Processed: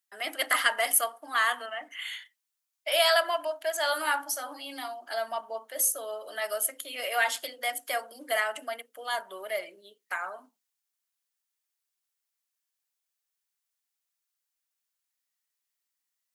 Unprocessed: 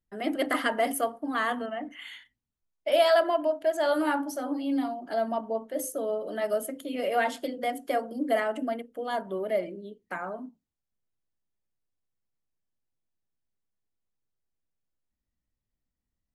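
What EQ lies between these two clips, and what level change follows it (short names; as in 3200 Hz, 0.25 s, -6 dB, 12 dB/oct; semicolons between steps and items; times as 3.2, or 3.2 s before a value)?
HPF 1100 Hz 12 dB/oct; high shelf 4600 Hz +8 dB; +4.5 dB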